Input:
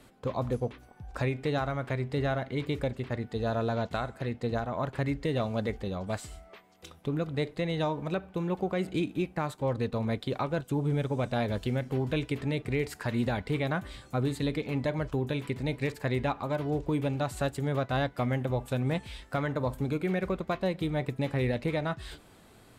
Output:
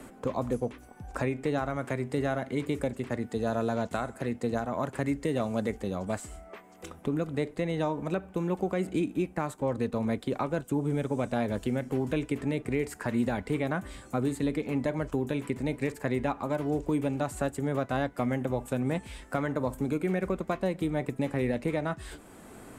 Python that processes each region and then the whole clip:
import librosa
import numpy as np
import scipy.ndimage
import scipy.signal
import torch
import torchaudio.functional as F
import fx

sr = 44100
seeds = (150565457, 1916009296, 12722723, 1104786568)

y = fx.chain(x, sr, fx.highpass(hz=59.0, slope=12),
    fx.peak_eq(hz=10000.0, db=5.5, octaves=1.8), at=(1.76, 6.05))
y = fx.graphic_eq(y, sr, hz=(125, 250, 4000, 8000), db=(-5, 4, -8, 6))
y = fx.band_squash(y, sr, depth_pct=40)